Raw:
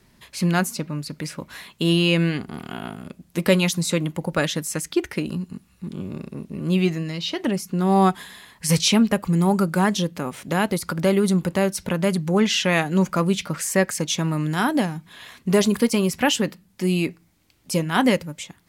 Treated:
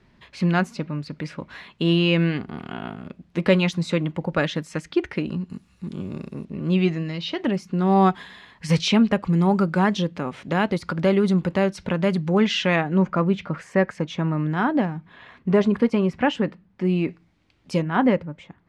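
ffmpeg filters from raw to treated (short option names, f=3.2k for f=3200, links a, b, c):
-af "asetnsamples=n=441:p=0,asendcmd='5.5 lowpass f 7200;6.45 lowpass f 3600;12.76 lowpass f 1900;17.08 lowpass f 3500;17.82 lowpass f 1600',lowpass=3.2k"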